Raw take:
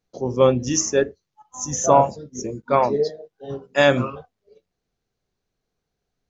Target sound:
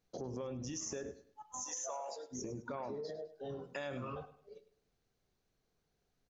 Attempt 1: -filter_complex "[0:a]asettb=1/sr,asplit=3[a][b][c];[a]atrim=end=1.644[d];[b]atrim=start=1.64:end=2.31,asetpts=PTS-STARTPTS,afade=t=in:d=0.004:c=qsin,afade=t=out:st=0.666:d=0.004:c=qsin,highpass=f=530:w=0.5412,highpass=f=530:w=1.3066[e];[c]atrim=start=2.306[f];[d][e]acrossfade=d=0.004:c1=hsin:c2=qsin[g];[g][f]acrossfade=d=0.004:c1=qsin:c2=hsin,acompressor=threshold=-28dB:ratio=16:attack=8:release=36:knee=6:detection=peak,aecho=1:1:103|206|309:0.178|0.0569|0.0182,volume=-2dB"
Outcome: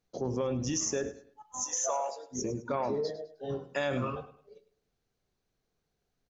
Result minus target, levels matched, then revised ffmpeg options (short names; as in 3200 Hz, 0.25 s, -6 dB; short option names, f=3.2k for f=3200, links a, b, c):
compressor: peak gain reduction -11 dB
-filter_complex "[0:a]asettb=1/sr,asplit=3[a][b][c];[a]atrim=end=1.644[d];[b]atrim=start=1.64:end=2.31,asetpts=PTS-STARTPTS,afade=t=in:d=0.004:c=qsin,afade=t=out:st=0.666:d=0.004:c=qsin,highpass=f=530:w=0.5412,highpass=f=530:w=1.3066[e];[c]atrim=start=2.306[f];[d][e]acrossfade=d=0.004:c1=hsin:c2=qsin[g];[g][f]acrossfade=d=0.004:c1=qsin:c2=hsin,acompressor=threshold=-39.5dB:ratio=16:attack=8:release=36:knee=6:detection=peak,aecho=1:1:103|206|309:0.178|0.0569|0.0182,volume=-2dB"